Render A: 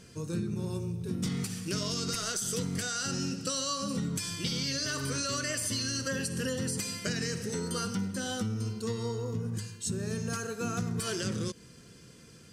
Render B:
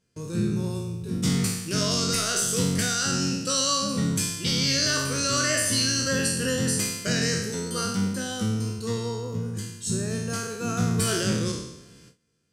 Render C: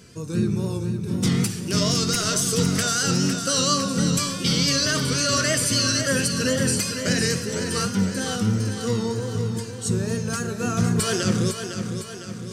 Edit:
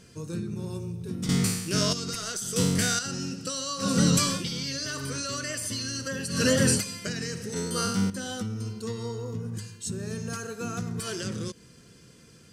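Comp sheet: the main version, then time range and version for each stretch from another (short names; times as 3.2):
A
1.29–1.93 from B
2.56–2.99 from B
3.82–4.41 from C, crossfade 0.10 s
6.34–6.81 from C, crossfade 0.16 s
7.56–8.1 from B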